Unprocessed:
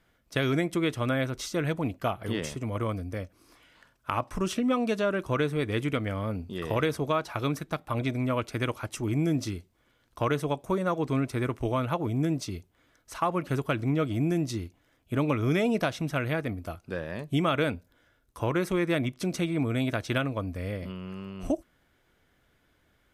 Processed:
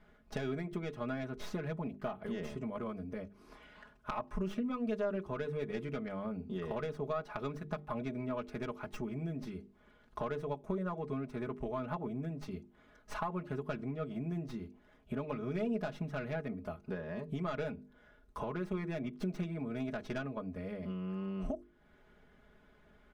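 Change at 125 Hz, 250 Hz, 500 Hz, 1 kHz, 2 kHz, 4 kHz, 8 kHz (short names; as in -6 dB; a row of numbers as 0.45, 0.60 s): -11.5 dB, -9.5 dB, -8.5 dB, -10.0 dB, -12.5 dB, -16.0 dB, under -15 dB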